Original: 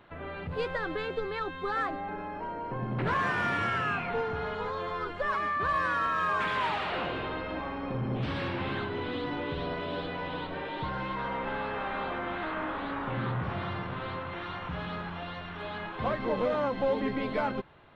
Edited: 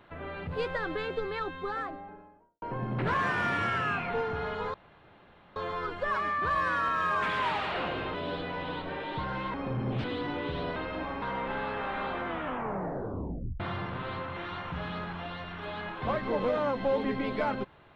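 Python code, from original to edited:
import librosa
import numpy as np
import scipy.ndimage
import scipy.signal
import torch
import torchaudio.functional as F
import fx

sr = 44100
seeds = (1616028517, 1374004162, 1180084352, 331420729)

y = fx.studio_fade_out(x, sr, start_s=1.34, length_s=1.28)
y = fx.edit(y, sr, fx.insert_room_tone(at_s=4.74, length_s=0.82),
    fx.swap(start_s=7.32, length_s=0.46, other_s=9.79, other_length_s=1.4),
    fx.cut(start_s=8.28, length_s=0.79),
    fx.tape_stop(start_s=12.24, length_s=1.33), tone=tone)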